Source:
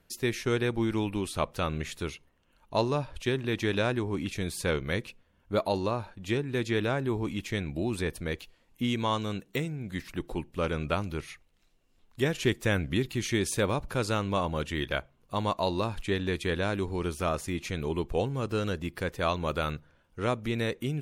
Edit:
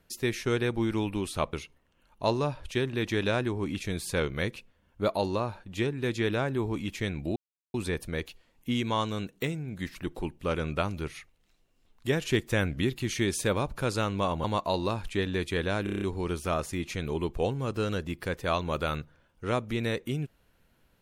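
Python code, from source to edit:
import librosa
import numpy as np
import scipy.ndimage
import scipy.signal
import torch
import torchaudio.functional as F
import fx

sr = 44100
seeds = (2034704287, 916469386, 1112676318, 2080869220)

y = fx.edit(x, sr, fx.cut(start_s=1.53, length_s=0.51),
    fx.insert_silence(at_s=7.87, length_s=0.38),
    fx.cut(start_s=14.57, length_s=0.8),
    fx.stutter(start_s=16.77, slice_s=0.03, count=7), tone=tone)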